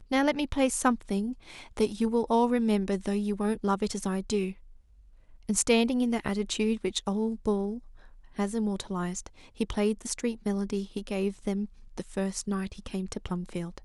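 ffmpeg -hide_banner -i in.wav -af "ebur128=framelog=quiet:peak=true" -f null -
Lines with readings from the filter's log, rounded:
Integrated loudness:
  I:         -29.5 LUFS
  Threshold: -40.0 LUFS
Loudness range:
  LRA:         4.4 LU
  Threshold: -50.0 LUFS
  LRA low:   -32.4 LUFS
  LRA high:  -28.0 LUFS
True peak:
  Peak:       -9.6 dBFS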